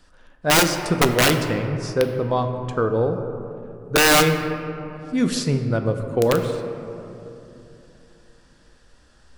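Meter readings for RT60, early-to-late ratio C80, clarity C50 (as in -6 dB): 3.0 s, 8.5 dB, 7.5 dB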